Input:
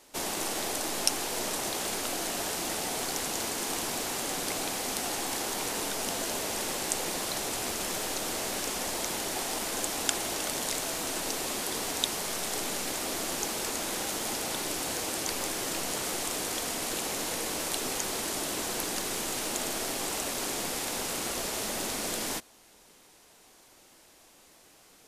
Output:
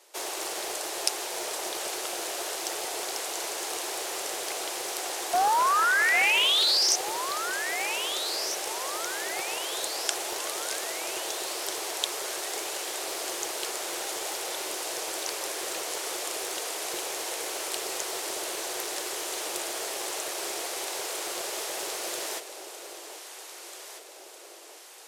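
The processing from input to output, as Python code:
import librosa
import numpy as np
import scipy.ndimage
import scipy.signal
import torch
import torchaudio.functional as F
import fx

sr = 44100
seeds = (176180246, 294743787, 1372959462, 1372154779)

p1 = scipy.signal.sosfilt(scipy.signal.cheby1(5, 1.0, 350.0, 'highpass', fs=sr, output='sos'), x)
p2 = fx.spec_paint(p1, sr, seeds[0], shape='rise', start_s=5.33, length_s=1.63, low_hz=690.0, high_hz=6000.0, level_db=-23.0)
p3 = p2 + fx.echo_alternate(p2, sr, ms=797, hz=840.0, feedback_pct=72, wet_db=-7.5, dry=0)
y = fx.doppler_dist(p3, sr, depth_ms=0.17)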